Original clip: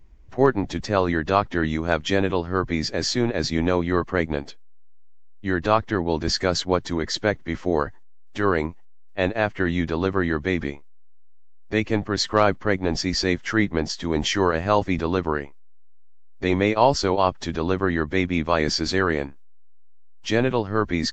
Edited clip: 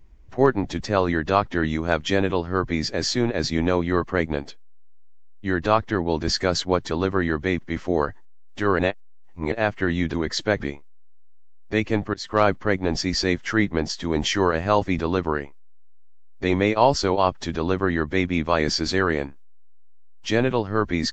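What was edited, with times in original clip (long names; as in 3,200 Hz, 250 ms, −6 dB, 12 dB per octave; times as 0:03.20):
0:06.91–0:07.37: swap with 0:09.92–0:10.60
0:08.57–0:09.30: reverse
0:12.14–0:12.42: fade in, from −23.5 dB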